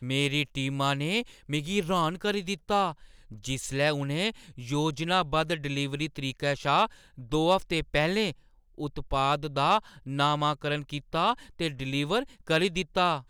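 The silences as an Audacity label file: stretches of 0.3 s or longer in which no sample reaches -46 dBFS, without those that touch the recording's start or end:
8.330000	8.780000	silence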